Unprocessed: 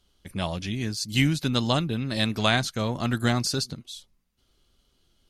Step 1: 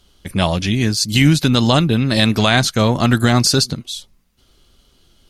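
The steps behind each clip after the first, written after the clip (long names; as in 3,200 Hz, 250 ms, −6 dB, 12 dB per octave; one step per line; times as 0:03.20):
boost into a limiter +13.5 dB
level −1 dB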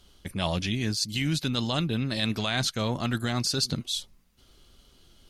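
dynamic equaliser 3,300 Hz, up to +4 dB, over −27 dBFS, Q 0.93
reversed playback
downward compressor 6 to 1, threshold −22 dBFS, peak gain reduction 14 dB
reversed playback
level −3 dB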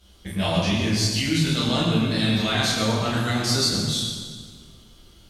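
convolution reverb RT60 1.8 s, pre-delay 7 ms, DRR −8.5 dB
level −3 dB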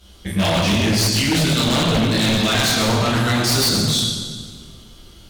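wave folding −19 dBFS
level +7 dB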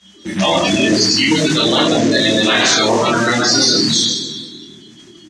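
spectral magnitudes quantised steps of 30 dB
loudspeaker in its box 210–7,600 Hz, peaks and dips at 310 Hz +6 dB, 1,800 Hz +6 dB, 6,200 Hz +6 dB
double-tracking delay 26 ms −3 dB
level +3 dB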